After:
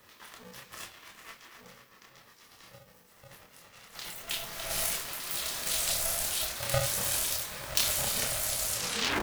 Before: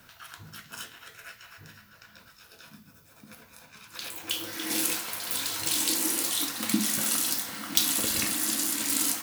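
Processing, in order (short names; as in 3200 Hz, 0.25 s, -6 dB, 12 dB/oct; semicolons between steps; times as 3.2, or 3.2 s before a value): tape stop at the end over 0.59 s; chorus voices 6, 0.53 Hz, delay 28 ms, depth 4.7 ms; polarity switched at an audio rate 340 Hz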